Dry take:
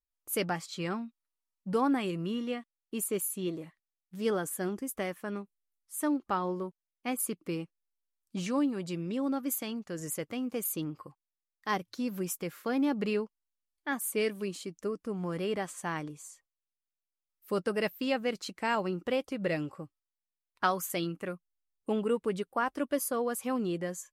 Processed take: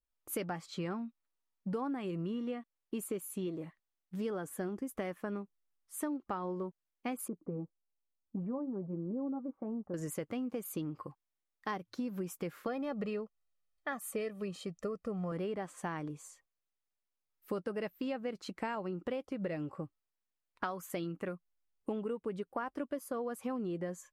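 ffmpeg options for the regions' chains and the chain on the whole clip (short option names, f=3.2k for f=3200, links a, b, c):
-filter_complex "[0:a]asettb=1/sr,asplit=3[a][b][c];[a]atrim=end=7.284[d];[b]atrim=start=7.28:end=9.94,asetpts=PTS-STARTPTS,afade=t=in:d=0.004:c=qsin,afade=t=out:st=2.656:d=0.004:c=qsin,lowpass=f=1k:w=0.5412,lowpass=f=1k:w=1.3066,flanger=delay=3.5:depth=1.8:regen=-53:speed=1.1:shape=sinusoidal[e];[c]atrim=start=9.936[f];[d][e]acrossfade=d=0.004:c1=hsin:c2=qsin[g];[g][f]acrossfade=d=0.004:c1=qsin:c2=hsin,asettb=1/sr,asplit=3[h][i][j];[h]atrim=end=12.674[k];[i]atrim=start=12.67:end=15.32,asetpts=PTS-STARTPTS,afade=t=in:d=0.004:c=qsin,afade=t=out:st=2.646:d=0.004:c=qsin,highshelf=f=12k:g=-5,aecho=1:1:1.6:0.66,atrim=end_sample=116865[l];[j]atrim=start=15.316[m];[k][l]acrossfade=d=0.004:c1=hsin:c2=qsin[n];[n][m]acrossfade=d=0.004:c1=qsin:c2=hsin,highshelf=f=3.1k:g=-9.5,acompressor=threshold=-38dB:ratio=6,adynamicequalizer=threshold=0.00178:dfrequency=1600:dqfactor=0.7:tfrequency=1600:tqfactor=0.7:attack=5:release=100:ratio=0.375:range=2:mode=cutabove:tftype=highshelf,volume=3.5dB"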